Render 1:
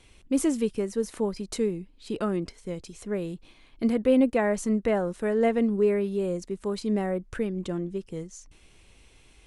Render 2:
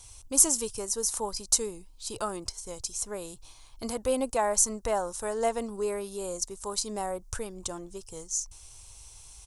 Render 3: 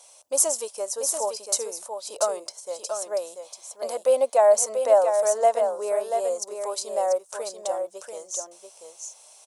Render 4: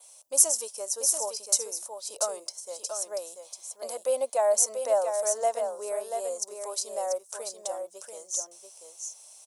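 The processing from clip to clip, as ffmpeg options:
ffmpeg -i in.wav -af "firequalizer=gain_entry='entry(120,0);entry(160,-19);entry(900,2);entry(1900,-12);entry(5800,12)':delay=0.05:min_phase=1,volume=4dB" out.wav
ffmpeg -i in.wav -af "highpass=frequency=590:width_type=q:width=6.6,aecho=1:1:687:0.473,volume=-1dB" out.wav
ffmpeg -i in.wav -filter_complex "[0:a]adynamicequalizer=threshold=0.00794:dfrequency=5700:dqfactor=4.1:tfrequency=5700:tqfactor=4.1:attack=5:release=100:ratio=0.375:range=2.5:mode=boostabove:tftype=bell,acrossover=split=930[link_01][link_02];[link_02]crystalizer=i=1.5:c=0[link_03];[link_01][link_03]amix=inputs=2:normalize=0,volume=-7dB" out.wav

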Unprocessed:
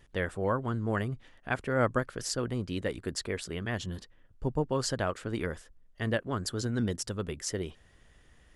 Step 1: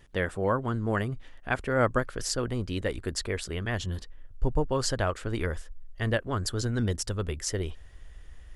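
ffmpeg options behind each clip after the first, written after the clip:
ffmpeg -i in.wav -af "asubboost=boost=5.5:cutoff=69,volume=3dB" out.wav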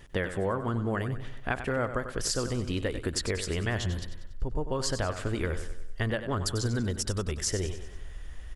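ffmpeg -i in.wav -af "acompressor=threshold=-32dB:ratio=6,aecho=1:1:95|190|285|380|475:0.299|0.146|0.0717|0.0351|0.0172,volume=5.5dB" out.wav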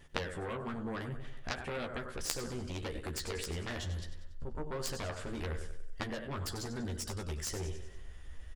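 ffmpeg -i in.wav -filter_complex "[0:a]flanger=delay=9.7:depth=6:regen=-78:speed=0.43:shape=sinusoidal,aeval=exprs='0.141*(cos(1*acos(clip(val(0)/0.141,-1,1)))-cos(1*PI/2))+0.0631*(cos(3*acos(clip(val(0)/0.141,-1,1)))-cos(3*PI/2))':channel_layout=same,asplit=2[link_01][link_02];[link_02]adelay=13,volume=-5dB[link_03];[link_01][link_03]amix=inputs=2:normalize=0,volume=7dB" out.wav

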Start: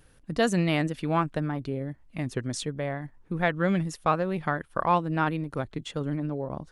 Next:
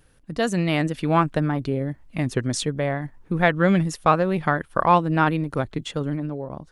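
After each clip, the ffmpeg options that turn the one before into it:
ffmpeg -i in.wav -af "dynaudnorm=framelen=150:gausssize=11:maxgain=7dB" out.wav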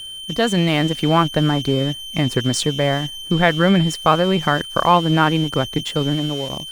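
ffmpeg -i in.wav -filter_complex "[0:a]asplit=2[link_01][link_02];[link_02]alimiter=limit=-15.5dB:level=0:latency=1:release=97,volume=2dB[link_03];[link_01][link_03]amix=inputs=2:normalize=0,aeval=exprs='val(0)+0.0562*sin(2*PI*3100*n/s)':channel_layout=same,aeval=exprs='sgn(val(0))*max(abs(val(0))-0.0211,0)':channel_layout=same" out.wav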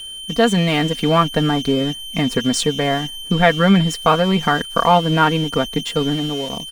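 ffmpeg -i in.wav -af "aecho=1:1:4.3:0.63" out.wav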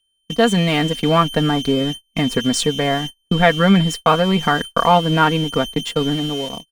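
ffmpeg -i in.wav -af "agate=range=-37dB:threshold=-25dB:ratio=16:detection=peak" out.wav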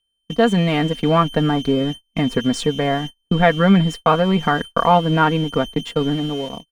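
ffmpeg -i in.wav -af "highshelf=frequency=3200:gain=-10.5" out.wav

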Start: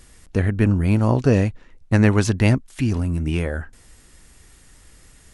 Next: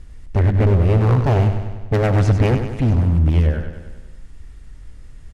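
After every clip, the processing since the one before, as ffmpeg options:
ffmpeg -i in.wav -af "aemphasis=mode=reproduction:type=bsi,aeval=exprs='0.422*(abs(mod(val(0)/0.422+3,4)-2)-1)':channel_layout=same,aecho=1:1:98|196|294|392|490|588|686:0.376|0.222|0.131|0.0772|0.0455|0.0269|0.0159,volume=-2.5dB" out.wav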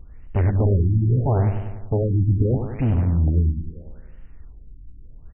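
ffmpeg -i in.wav -af "afftfilt=real='re*lt(b*sr/1024,340*pow(3200/340,0.5+0.5*sin(2*PI*0.77*pts/sr)))':imag='im*lt(b*sr/1024,340*pow(3200/340,0.5+0.5*sin(2*PI*0.77*pts/sr)))':win_size=1024:overlap=0.75,volume=-3.5dB" out.wav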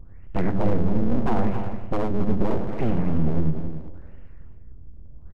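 ffmpeg -i in.wav -af "aeval=exprs='abs(val(0))':channel_layout=same,aecho=1:1:272:0.335" out.wav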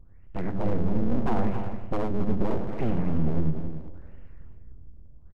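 ffmpeg -i in.wav -af "dynaudnorm=framelen=140:gausssize=9:maxgain=6.5dB,volume=-8.5dB" out.wav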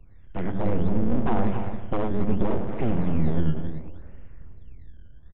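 ffmpeg -i in.wav -filter_complex "[0:a]acrossover=split=130|630[link_01][link_02][link_03];[link_01]acrusher=samples=16:mix=1:aa=0.000001:lfo=1:lforange=25.6:lforate=0.64[link_04];[link_04][link_02][link_03]amix=inputs=3:normalize=0,aresample=8000,aresample=44100,volume=2dB" out.wav

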